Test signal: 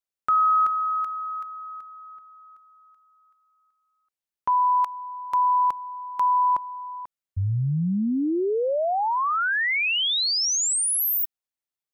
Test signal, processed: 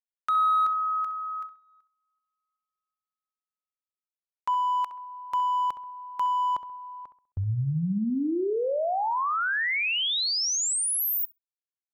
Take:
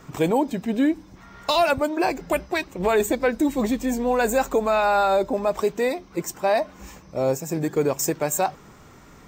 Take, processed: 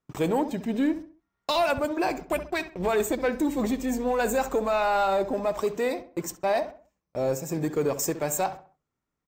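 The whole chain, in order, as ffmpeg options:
ffmpeg -i in.wav -filter_complex "[0:a]agate=range=-34dB:threshold=-35dB:ratio=16:release=103:detection=rms,asplit=2[link_01][link_02];[link_02]asoftclip=type=hard:threshold=-20.5dB,volume=-5.5dB[link_03];[link_01][link_03]amix=inputs=2:normalize=0,asplit=2[link_04][link_05];[link_05]adelay=66,lowpass=frequency=2300:poles=1,volume=-12dB,asplit=2[link_06][link_07];[link_07]adelay=66,lowpass=frequency=2300:poles=1,volume=0.37,asplit=2[link_08][link_09];[link_09]adelay=66,lowpass=frequency=2300:poles=1,volume=0.37,asplit=2[link_10][link_11];[link_11]adelay=66,lowpass=frequency=2300:poles=1,volume=0.37[link_12];[link_04][link_06][link_08][link_10][link_12]amix=inputs=5:normalize=0,volume=-7dB" out.wav

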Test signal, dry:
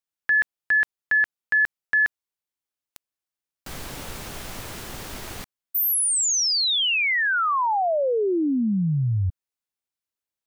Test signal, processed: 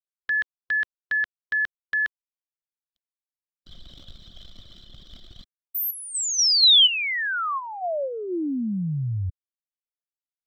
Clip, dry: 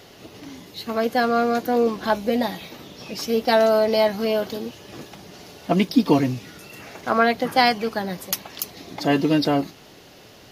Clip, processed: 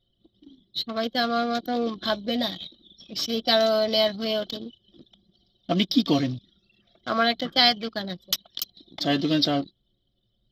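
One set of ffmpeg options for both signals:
ffmpeg -i in.wav -af "superequalizer=7b=0.562:9b=0.398:13b=3.98:14b=2.24:16b=0.316,anlmdn=63.1,volume=-4dB" out.wav

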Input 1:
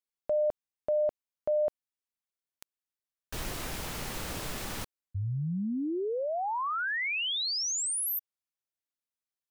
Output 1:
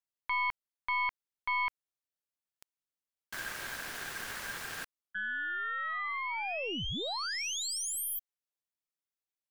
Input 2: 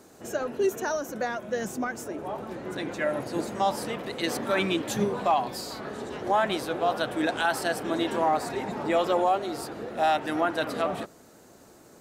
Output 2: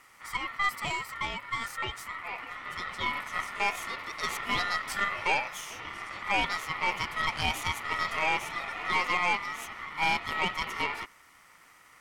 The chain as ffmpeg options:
ffmpeg -i in.wav -af "aeval=exprs='val(0)*sin(2*PI*1600*n/s)':channel_layout=same,aeval=exprs='0.2*(cos(1*acos(clip(val(0)/0.2,-1,1)))-cos(1*PI/2))+0.0251*(cos(4*acos(clip(val(0)/0.2,-1,1)))-cos(4*PI/2))+0.00141*(cos(5*acos(clip(val(0)/0.2,-1,1)))-cos(5*PI/2))':channel_layout=same,volume=-1.5dB" out.wav

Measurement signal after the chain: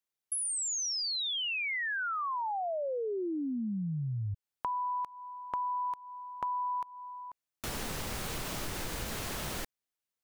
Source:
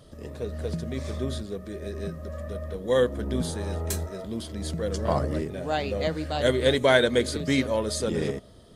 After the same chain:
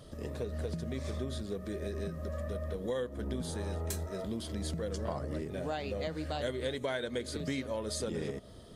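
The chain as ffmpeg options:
ffmpeg -i in.wav -af "acompressor=threshold=-33dB:ratio=6" out.wav

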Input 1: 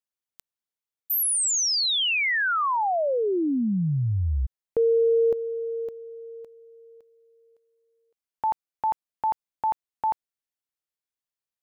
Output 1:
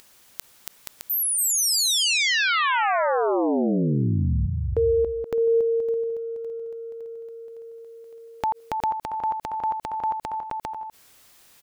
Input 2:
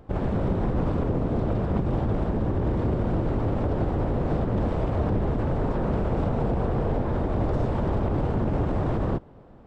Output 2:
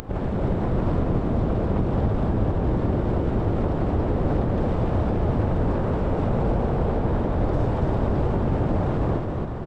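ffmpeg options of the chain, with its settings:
ffmpeg -i in.wav -af "aecho=1:1:280|476|613.2|709.2|776.5:0.631|0.398|0.251|0.158|0.1,acompressor=mode=upward:threshold=-30dB:ratio=2.5:attack=10:release=28:knee=2.83:detection=peak" out.wav

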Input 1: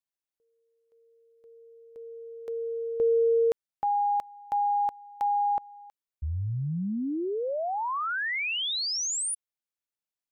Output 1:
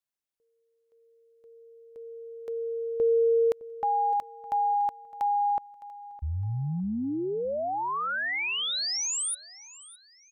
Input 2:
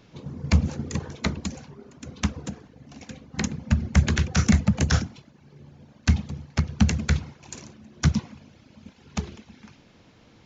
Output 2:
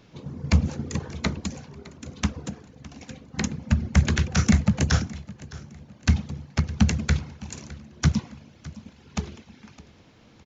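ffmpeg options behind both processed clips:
ffmpeg -i in.wav -af "aecho=1:1:611|1222|1833:0.112|0.037|0.0122" out.wav

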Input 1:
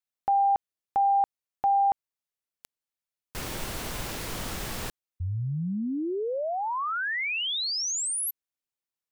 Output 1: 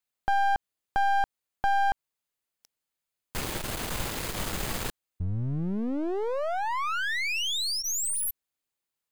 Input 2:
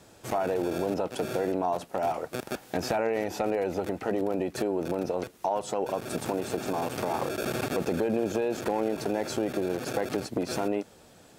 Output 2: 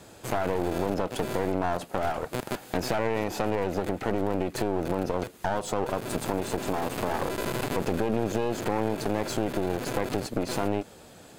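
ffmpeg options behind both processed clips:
ffmpeg -i in.wav -filter_complex "[0:a]bandreject=frequency=5600:width=11,asplit=2[link_01][link_02];[link_02]acompressor=threshold=-35dB:ratio=6:attack=93:release=94:knee=6,volume=-2.5dB[link_03];[link_01][link_03]amix=inputs=2:normalize=0,aeval=exprs='clip(val(0),-1,0.0178)':channel_layout=same" out.wav

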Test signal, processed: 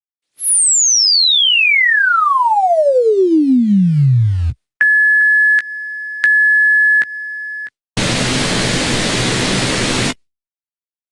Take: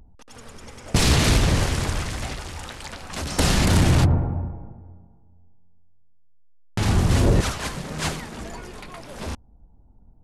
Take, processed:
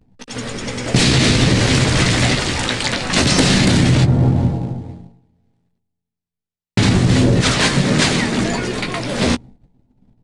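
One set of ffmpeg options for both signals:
ffmpeg -i in.wav -filter_complex "[0:a]asplit=2[link_01][link_02];[link_02]acrusher=bits=4:mode=log:mix=0:aa=0.000001,volume=-11dB[link_03];[link_01][link_03]amix=inputs=2:normalize=0,equalizer=frequency=125:width_type=o:width=1:gain=8,equalizer=frequency=250:width_type=o:width=1:gain=9,equalizer=frequency=500:width_type=o:width=1:gain=5,equalizer=frequency=2000:width_type=o:width=1:gain=7,equalizer=frequency=4000:width_type=o:width=1:gain=8,equalizer=frequency=8000:width_type=o:width=1:gain=4,alimiter=limit=-9dB:level=0:latency=1:release=137,aresample=22050,aresample=44100,asplit=2[link_04][link_05];[link_05]adelay=16,volume=-8dB[link_06];[link_04][link_06]amix=inputs=2:normalize=0,agate=range=-33dB:threshold=-34dB:ratio=3:detection=peak,equalizer=frequency=61:width_type=o:width=0.43:gain=-12,acompressor=threshold=-16dB:ratio=10,volume=7dB" -ar 48000 -c:a libopus -b:a 48k out.opus

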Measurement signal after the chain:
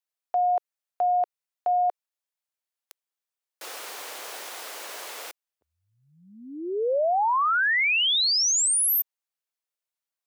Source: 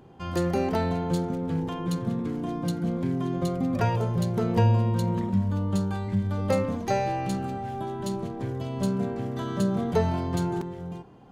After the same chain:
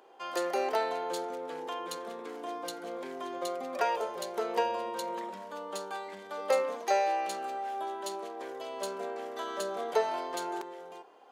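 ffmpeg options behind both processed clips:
ffmpeg -i in.wav -af "highpass=frequency=450:width=0.5412,highpass=frequency=450:width=1.3066" out.wav

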